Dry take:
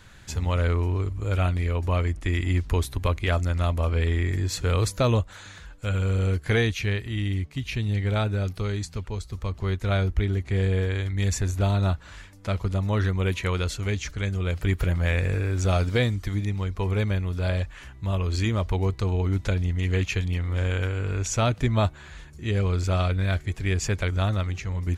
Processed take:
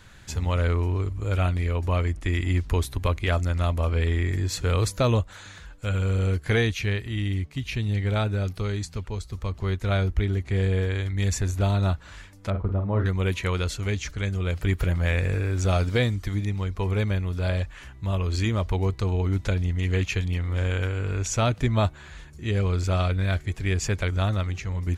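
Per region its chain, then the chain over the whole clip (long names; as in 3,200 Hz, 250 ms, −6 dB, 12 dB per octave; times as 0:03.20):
0:12.50–0:13.06: low-pass filter 1,200 Hz + double-tracking delay 45 ms −7 dB
whole clip: no processing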